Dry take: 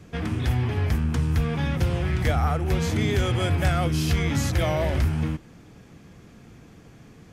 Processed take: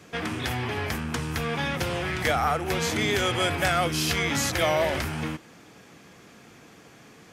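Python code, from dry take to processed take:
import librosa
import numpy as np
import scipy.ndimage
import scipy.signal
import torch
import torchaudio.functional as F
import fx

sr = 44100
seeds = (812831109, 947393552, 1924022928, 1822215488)

y = fx.highpass(x, sr, hz=610.0, slope=6)
y = y * 10.0 ** (5.5 / 20.0)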